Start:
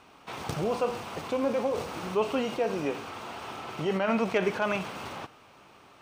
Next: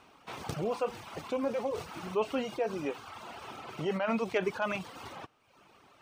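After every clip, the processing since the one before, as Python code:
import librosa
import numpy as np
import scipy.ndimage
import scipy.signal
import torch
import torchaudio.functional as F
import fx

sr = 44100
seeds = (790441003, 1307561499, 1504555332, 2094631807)

y = fx.dereverb_blind(x, sr, rt60_s=0.89)
y = y * 10.0 ** (-3.0 / 20.0)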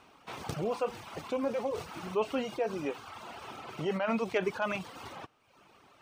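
y = x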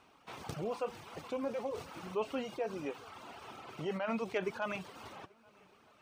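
y = fx.echo_feedback(x, sr, ms=419, feedback_pct=55, wet_db=-23.5)
y = y * 10.0 ** (-5.0 / 20.0)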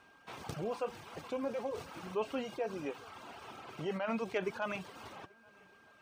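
y = x + 10.0 ** (-63.0 / 20.0) * np.sin(2.0 * np.pi * 1600.0 * np.arange(len(x)) / sr)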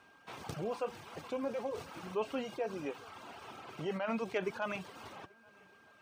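y = scipy.signal.sosfilt(scipy.signal.butter(2, 56.0, 'highpass', fs=sr, output='sos'), x)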